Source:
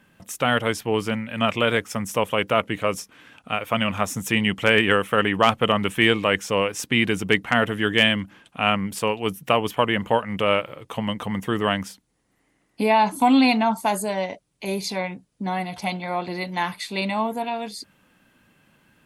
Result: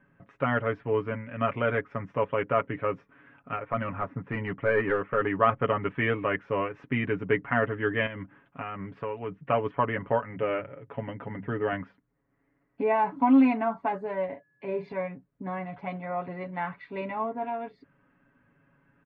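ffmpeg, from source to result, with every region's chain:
-filter_complex "[0:a]asettb=1/sr,asplit=3[s0][s1][s2];[s0]atrim=end=3.564[s3];[s1]atrim=start=3.56:end=5.27,asetpts=PTS-STARTPTS,afade=t=in:d=0.004:c=qsin,afade=t=out:st=1.706:d=0.004:c=qsin,lowpass=2300,aeval=exprs='clip(val(0),-1,0.2)':c=same[s4];[s2]atrim=start=5.266[s5];[s3][s4]acrossfade=d=0.004:c1=hsin:c2=qsin[s6];[s6][s5]acrossfade=d=0.004:c1=qsin:c2=hsin,asettb=1/sr,asplit=3[s7][s8][s9];[s7]atrim=end=8.064[s10];[s8]atrim=start=8.06:end=9.37,asetpts=PTS-STARTPTS,afade=t=in:d=0.004:c=qsin,afade=t=out:st=1.306:d=0.004:c=qsin,acompressor=threshold=0.0794:ratio=10:attack=3.2:release=140:knee=1:detection=peak,lowpass=9500[s11];[s9]atrim=start=9.366[s12];[s10][s11]acrossfade=d=0.004:c1=hsin:c2=qsin[s13];[s13][s12]acrossfade=d=0.004:c1=qsin:c2=hsin,asettb=1/sr,asplit=3[s14][s15][s16];[s14]atrim=end=10.284[s17];[s15]atrim=start=10.28:end=11.73,asetpts=PTS-STARTPTS,afade=t=in:d=0.004:c=qsin,afade=t=out:st=1.446:d=0.004:c=qsin,lowpass=3300,equalizer=f=1100:t=o:w=0.24:g=-12,bandreject=f=50:t=h:w=6,bandreject=f=100:t=h:w=6,bandreject=f=150:t=h:w=6,bandreject=f=200:t=h:w=6[s18];[s16]atrim=start=11.726[s19];[s17][s18]acrossfade=d=0.004:c1=hsin:c2=qsin[s20];[s20][s19]acrossfade=d=0.004:c1=qsin:c2=hsin,asettb=1/sr,asplit=3[s21][s22][s23];[s21]atrim=end=14.284[s24];[s22]atrim=start=14.28:end=14.92,asetpts=PTS-STARTPTS,afade=t=in:d=0.004:c=qsin,afade=t=out:st=0.636:d=0.004:c=qsin,highpass=94,aeval=exprs='val(0)+0.00112*sin(2*PI*1700*n/s)':c=same,asplit=2[s25][s26];[s26]adelay=38,volume=0.422[s27];[s25][s27]amix=inputs=2:normalize=0,atrim=end_sample=28224[s28];[s23]atrim=start=14.916[s29];[s24][s28]acrossfade=d=0.004:c1=hsin:c2=qsin[s30];[s30][s29]acrossfade=d=0.004:c1=qsin:c2=hsin,lowpass=f=1900:w=0.5412,lowpass=f=1900:w=1.3066,equalizer=f=780:t=o:w=0.23:g=-6.5,aecho=1:1:7.2:0.71,volume=0.501"

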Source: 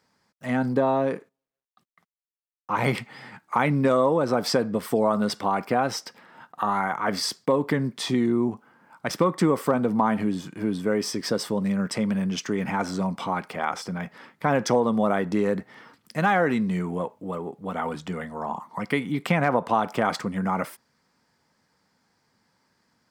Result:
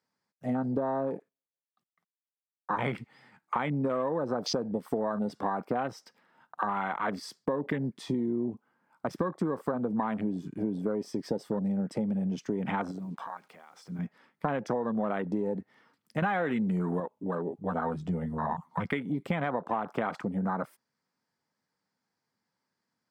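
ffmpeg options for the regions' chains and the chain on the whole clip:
-filter_complex "[0:a]asettb=1/sr,asplit=3[s0][s1][s2];[s0]atrim=end=12.914[s3];[s1]atrim=start=12.91:end=13.99,asetpts=PTS-STARTPTS,afade=t=in:d=0.004:c=qsin,afade=t=out:st=1.076:d=0.004:c=qsin,lowshelf=f=170:g=-5.5,acompressor=threshold=0.02:ratio=6:attack=3.2:release=140:knee=1:detection=peak,acrusher=bits=8:mix=0:aa=0.5[s4];[s2]atrim=start=13.986[s5];[s3][s4]acrossfade=d=0.004:c1=hsin:c2=qsin[s6];[s6][s5]acrossfade=d=0.004:c1=qsin:c2=hsin,asettb=1/sr,asplit=3[s7][s8][s9];[s7]atrim=end=16.224[s10];[s8]atrim=start=16.22:end=17,asetpts=PTS-STARTPTS,afade=t=in:d=0.004:c=qsin,afade=t=out:st=0.776:d=0.004:c=qsin,highshelf=f=9100:g=10,acontrast=68[s11];[s9]atrim=start=16.996[s12];[s10][s11]acrossfade=d=0.004:c1=hsin:c2=qsin[s13];[s13][s12]acrossfade=d=0.004:c1=qsin:c2=hsin,asettb=1/sr,asplit=3[s14][s15][s16];[s14]atrim=end=17.504[s17];[s15]atrim=start=17.5:end=18.9,asetpts=PTS-STARTPTS,afade=t=in:d=0.004:c=qsin,afade=t=out:st=1.396:d=0.004:c=qsin,asubboost=boost=9:cutoff=160,asplit=2[s18][s19];[s19]adelay=12,volume=0.631[s20];[s18][s20]amix=inputs=2:normalize=0,atrim=end_sample=61740[s21];[s16]atrim=start=18.896[s22];[s17][s21]acrossfade=d=0.004:c1=hsin:c2=qsin[s23];[s23][s22]acrossfade=d=0.004:c1=qsin:c2=hsin,afwtdn=0.0316,highpass=100,acompressor=threshold=0.0355:ratio=5,volume=1.19"

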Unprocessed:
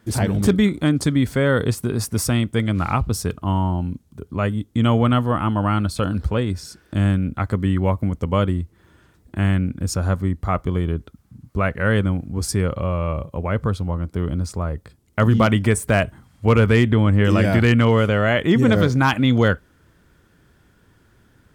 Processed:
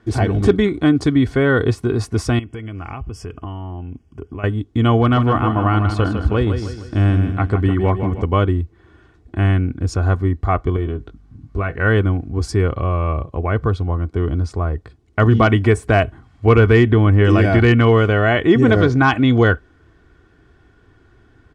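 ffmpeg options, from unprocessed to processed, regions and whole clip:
-filter_complex "[0:a]asettb=1/sr,asplit=3[s0][s1][s2];[s0]atrim=end=2.394[s3];[s1]atrim=start=2.39:end=4.44,asetpts=PTS-STARTPTS,afade=t=in:d=0.004:c=qsin,afade=t=out:st=2.046:d=0.004:c=qsin,equalizer=f=2700:t=o:w=0.56:g=6,acompressor=threshold=0.0398:ratio=12:attack=3.2:release=140:knee=1:detection=peak,asuperstop=centerf=3900:order=8:qfactor=3.1[s4];[s2]atrim=start=4.436[s5];[s3][s4]acrossfade=d=0.004:c1=hsin:c2=qsin[s6];[s6][s5]acrossfade=d=0.004:c1=qsin:c2=hsin,asettb=1/sr,asplit=3[s7][s8][s9];[s7]atrim=end=5.014[s10];[s8]atrim=start=5.01:end=8.22,asetpts=PTS-STARTPTS,afade=t=in:d=0.004:c=qsin,afade=t=out:st=3.206:d=0.004:c=qsin,asoftclip=type=hard:threshold=0.355,aecho=1:1:155|310|465|620|775:0.398|0.179|0.0806|0.0363|0.0163,atrim=end_sample=141561[s11];[s9]atrim=start=8.216[s12];[s10][s11]acrossfade=d=0.004:c1=hsin:c2=qsin[s13];[s13][s12]acrossfade=d=0.004:c1=qsin:c2=hsin,asettb=1/sr,asplit=3[s14][s15][s16];[s14]atrim=end=10.764[s17];[s15]atrim=start=10.76:end=11.76,asetpts=PTS-STARTPTS,afade=t=in:d=0.004:c=qsin,afade=t=out:st=0.996:d=0.004:c=qsin,acompressor=threshold=0.0794:ratio=4:attack=3.2:release=140:knee=1:detection=peak,aeval=exprs='val(0)+0.002*(sin(2*PI*50*n/s)+sin(2*PI*2*50*n/s)/2+sin(2*PI*3*50*n/s)/3+sin(2*PI*4*50*n/s)/4+sin(2*PI*5*50*n/s)/5)':c=same,asplit=2[s18][s19];[s19]adelay=20,volume=0.422[s20];[s18][s20]amix=inputs=2:normalize=0,atrim=end_sample=44100[s21];[s16]atrim=start=11.756[s22];[s17][s21]acrossfade=d=0.004:c1=hsin:c2=qsin[s23];[s23][s22]acrossfade=d=0.004:c1=qsin:c2=hsin,lowpass=6700,highshelf=f=3500:g=-9.5,aecho=1:1:2.7:0.54,volume=1.5"

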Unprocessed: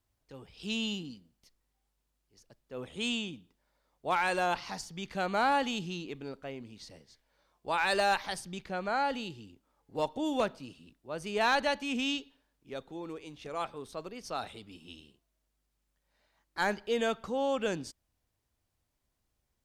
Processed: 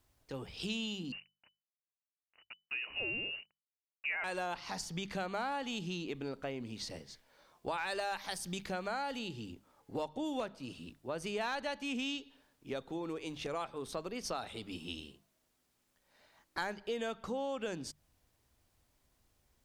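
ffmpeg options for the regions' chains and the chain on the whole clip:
-filter_complex "[0:a]asettb=1/sr,asplit=3[s0][s1][s2];[s0]atrim=end=1.124[s3];[s1]atrim=start=1.12:end=4.24,asetpts=PTS-STARTPTS,afade=t=in:d=0.004:c=qsin,afade=t=out:st=3.116:d=0.004:c=qsin,acrusher=bits=8:mix=0:aa=0.5,lowpass=f=2600:t=q:w=0.5098,lowpass=f=2600:t=q:w=0.6013,lowpass=f=2600:t=q:w=0.9,lowpass=f=2600:t=q:w=2.563,afreqshift=-3000[s4];[s2]atrim=start=4.236[s5];[s3][s4]acrossfade=d=0.004:c1=hsin:c2=qsin[s6];[s6][s5]acrossfade=d=0.004:c1=qsin:c2=hsin,asettb=1/sr,asplit=3[s7][s8][s9];[s7]atrim=end=8.164[s10];[s8]atrim=start=8.16:end=9.19,asetpts=PTS-STARTPTS,afade=t=in:d=0.004:c=qsin,afade=t=out:st=1.026:d=0.004:c=qsin,aemphasis=mode=production:type=cd,deesser=0.7[s11];[s9]atrim=start=9.186[s12];[s10][s11]acrossfade=d=0.004:c1=hsin:c2=qsin[s13];[s13][s12]acrossfade=d=0.004:c1=qsin:c2=hsin,acompressor=threshold=0.00631:ratio=5,bandreject=f=50:t=h:w=6,bandreject=f=100:t=h:w=6,bandreject=f=150:t=h:w=6,bandreject=f=200:t=h:w=6,volume=2.37"

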